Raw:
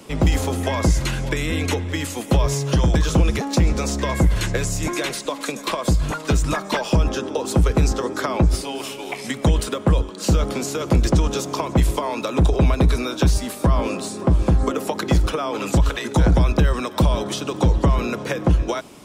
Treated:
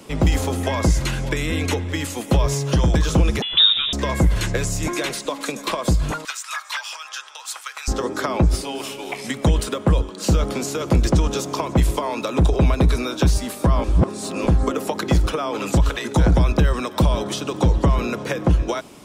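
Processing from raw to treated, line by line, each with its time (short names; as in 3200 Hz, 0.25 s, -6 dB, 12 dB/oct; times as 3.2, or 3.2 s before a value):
3.42–3.93 inverted band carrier 3700 Hz
6.25–7.88 HPF 1200 Hz 24 dB/oct
13.84–14.47 reverse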